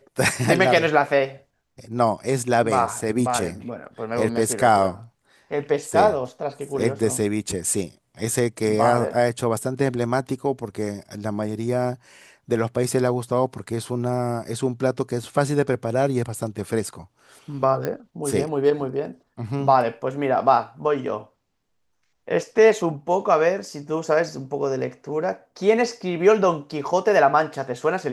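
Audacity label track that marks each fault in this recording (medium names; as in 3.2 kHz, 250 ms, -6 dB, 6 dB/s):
17.850000	17.850000	pop -13 dBFS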